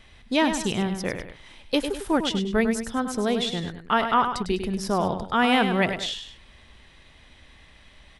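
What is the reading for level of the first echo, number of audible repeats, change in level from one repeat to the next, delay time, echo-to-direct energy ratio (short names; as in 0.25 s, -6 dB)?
-8.0 dB, 2, -8.0 dB, 0.101 s, -7.5 dB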